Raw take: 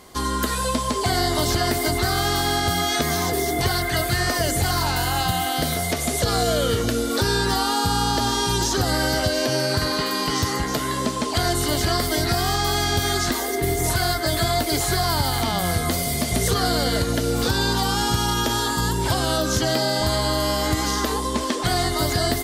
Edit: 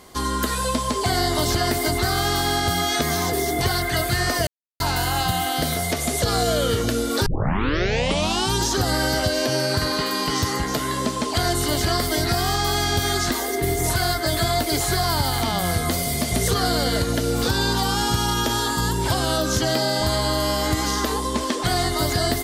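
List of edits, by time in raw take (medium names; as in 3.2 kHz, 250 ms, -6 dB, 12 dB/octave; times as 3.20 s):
4.47–4.80 s: mute
7.26 s: tape start 1.27 s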